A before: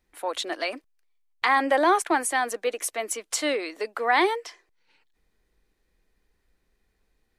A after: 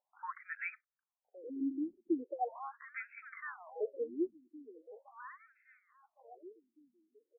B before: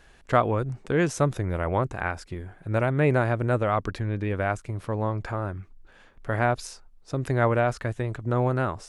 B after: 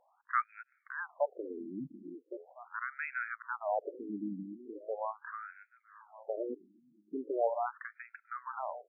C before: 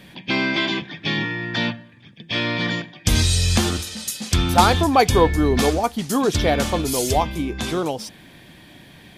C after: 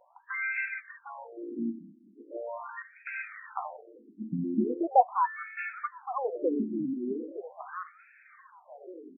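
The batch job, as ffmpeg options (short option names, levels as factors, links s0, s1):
-filter_complex "[0:a]highshelf=f=4200:t=q:w=3:g=7.5,aeval=exprs='1.58*(cos(1*acos(clip(val(0)/1.58,-1,1)))-cos(1*PI/2))+0.0562*(cos(7*acos(clip(val(0)/1.58,-1,1)))-cos(7*PI/2))':c=same,asplit=2[s0][s1];[s1]adelay=1114,lowpass=f=2500:p=1,volume=0.15,asplit=2[s2][s3];[s3]adelay=1114,lowpass=f=2500:p=1,volume=0.48,asplit=2[s4][s5];[s5]adelay=1114,lowpass=f=2500:p=1,volume=0.48,asplit=2[s6][s7];[s7]adelay=1114,lowpass=f=2500:p=1,volume=0.48[s8];[s2][s4][s6][s8]amix=inputs=4:normalize=0[s9];[s0][s9]amix=inputs=2:normalize=0,afftfilt=real='re*between(b*sr/1024,240*pow(1900/240,0.5+0.5*sin(2*PI*0.4*pts/sr))/1.41,240*pow(1900/240,0.5+0.5*sin(2*PI*0.4*pts/sr))*1.41)':imag='im*between(b*sr/1024,240*pow(1900/240,0.5+0.5*sin(2*PI*0.4*pts/sr))/1.41,240*pow(1900/240,0.5+0.5*sin(2*PI*0.4*pts/sr))*1.41)':win_size=1024:overlap=0.75,volume=0.794"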